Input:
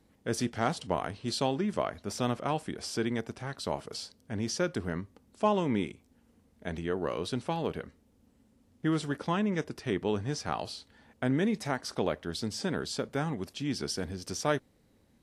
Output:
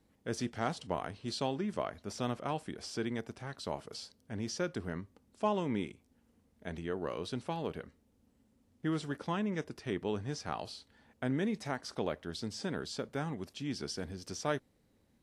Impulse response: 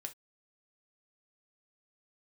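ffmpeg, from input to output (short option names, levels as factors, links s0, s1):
-filter_complex "[0:a]acrossover=split=8600[s0][s1];[s1]acompressor=threshold=0.00158:ratio=4:attack=1:release=60[s2];[s0][s2]amix=inputs=2:normalize=0,volume=0.562"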